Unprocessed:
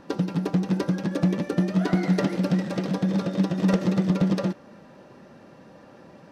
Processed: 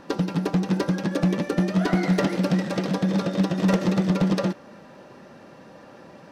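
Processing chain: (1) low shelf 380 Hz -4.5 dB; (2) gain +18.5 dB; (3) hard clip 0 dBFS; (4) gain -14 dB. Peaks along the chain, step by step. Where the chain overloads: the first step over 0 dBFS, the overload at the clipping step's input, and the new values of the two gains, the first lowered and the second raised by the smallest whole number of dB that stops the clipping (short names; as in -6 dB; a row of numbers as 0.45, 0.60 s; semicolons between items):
-13.0, +5.5, 0.0, -14.0 dBFS; step 2, 5.5 dB; step 2 +12.5 dB, step 4 -8 dB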